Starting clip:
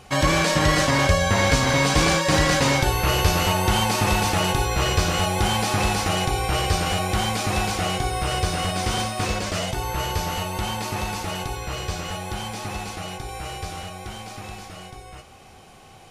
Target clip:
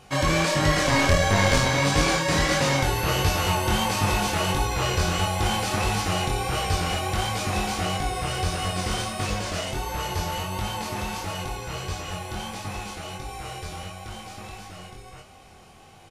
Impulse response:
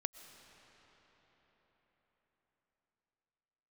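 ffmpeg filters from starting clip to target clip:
-filter_complex "[0:a]asplit=2[s0][s1];[s1]aecho=0:1:460:0.211[s2];[s0][s2]amix=inputs=2:normalize=0,asettb=1/sr,asplit=3[s3][s4][s5];[s3]atrim=end=0.854[s6];[s4]atrim=start=0.85:end=1.68,asetpts=PTS-STARTPTS,afade=t=in:d=0.004:c=qsin,afade=t=out:st=0.826:d=0.004:c=qsin,aeval=exprs='0.562*(cos(1*acos(clip(val(0)/0.562,-1,1)))-cos(1*PI/2))+0.251*(cos(2*acos(clip(val(0)/0.562,-1,1)))-cos(2*PI/2))+0.0355*(cos(5*acos(clip(val(0)/0.562,-1,1)))-cos(5*PI/2))':c=same[s7];[s5]atrim=start=1.676[s8];[s6][s7]acrossfade=d=0.004:c1=hsin:c2=qsin[s9];[s9][s8]acrossfade=d=0.004:c1=qsin:c2=hsin,flanger=delay=20:depth=5:speed=1.5"

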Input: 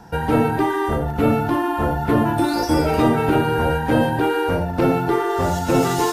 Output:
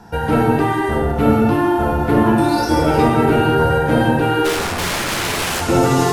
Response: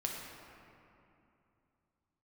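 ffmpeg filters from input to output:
-filter_complex "[0:a]asplit=3[s0][s1][s2];[s0]afade=t=out:st=4.44:d=0.02[s3];[s1]aeval=exprs='(mod(8.91*val(0)+1,2)-1)/8.91':c=same,afade=t=in:st=4.44:d=0.02,afade=t=out:st=5.6:d=0.02[s4];[s2]afade=t=in:st=5.6:d=0.02[s5];[s3][s4][s5]amix=inputs=3:normalize=0[s6];[1:a]atrim=start_sample=2205,afade=t=out:st=0.18:d=0.01,atrim=end_sample=8379,asetrate=25137,aresample=44100[s7];[s6][s7]afir=irnorm=-1:irlink=0,volume=0.891"

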